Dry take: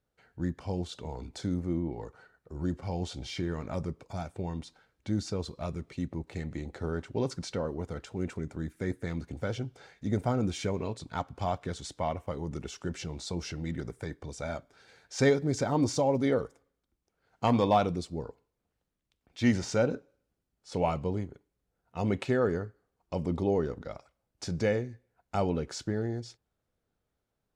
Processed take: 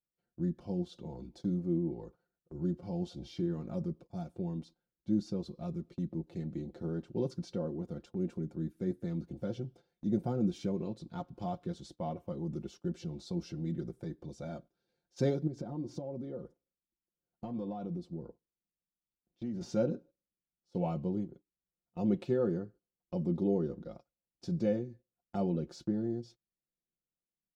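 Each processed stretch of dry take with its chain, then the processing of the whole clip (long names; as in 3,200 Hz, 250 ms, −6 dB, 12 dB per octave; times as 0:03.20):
0:15.47–0:19.61: high-shelf EQ 2,300 Hz −9 dB + downward compressor 5 to 1, threshold −33 dBFS
whole clip: graphic EQ with 10 bands 250 Hz +8 dB, 1,000 Hz −5 dB, 2,000 Hz −12 dB, 8,000 Hz −11 dB; noise gate −46 dBFS, range −15 dB; comb filter 5.7 ms, depth 72%; level −7 dB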